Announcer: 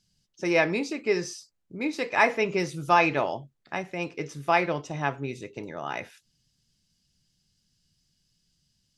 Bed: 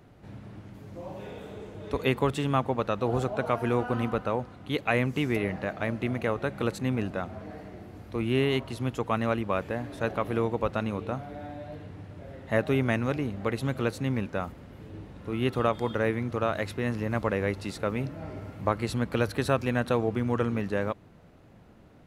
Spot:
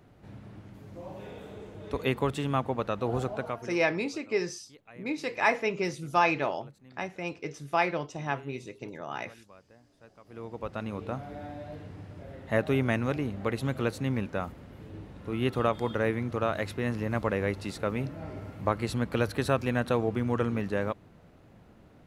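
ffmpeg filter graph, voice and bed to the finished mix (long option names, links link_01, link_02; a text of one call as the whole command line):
ffmpeg -i stem1.wav -i stem2.wav -filter_complex "[0:a]adelay=3250,volume=-3.5dB[link_01];[1:a]volume=22.5dB,afade=type=out:start_time=3.3:duration=0.46:silence=0.0668344,afade=type=in:start_time=10.24:duration=1.03:silence=0.0562341[link_02];[link_01][link_02]amix=inputs=2:normalize=0" out.wav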